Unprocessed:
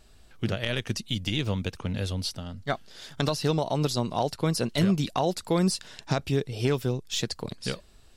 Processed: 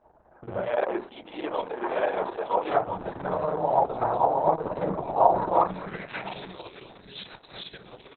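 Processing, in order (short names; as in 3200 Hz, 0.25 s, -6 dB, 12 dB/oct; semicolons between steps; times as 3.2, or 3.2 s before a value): regenerating reverse delay 0.671 s, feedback 59%, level -1 dB; low-pass opened by the level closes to 1300 Hz, open at -20.5 dBFS; 0.63–2.7 HPF 320 Hz 24 dB/oct; tilt -2.5 dB/oct; compressor 5:1, threshold -23 dBFS, peak gain reduction 12 dB; band-pass sweep 840 Hz -> 5200 Hz, 5.29–6.76; tremolo 5.6 Hz, depth 41%; echo 1.041 s -21.5 dB; reverb RT60 0.30 s, pre-delay 37 ms, DRR -8.5 dB; gain +6.5 dB; Opus 6 kbps 48000 Hz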